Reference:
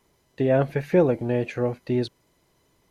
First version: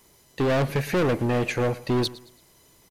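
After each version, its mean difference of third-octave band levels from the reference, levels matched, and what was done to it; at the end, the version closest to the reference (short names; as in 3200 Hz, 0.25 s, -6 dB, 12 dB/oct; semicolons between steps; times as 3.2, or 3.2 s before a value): 9.0 dB: high shelf 4300 Hz +11 dB; overloaded stage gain 25 dB; on a send: feedback echo 0.111 s, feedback 35%, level -18.5 dB; on the sum: gain +5 dB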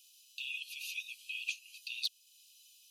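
26.5 dB: Chebyshev high-pass 2500 Hz, order 10; in parallel at +1.5 dB: compressor, threshold -55 dBFS, peak gain reduction 18.5 dB; on the sum: overloaded stage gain 30 dB; gain +4.5 dB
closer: first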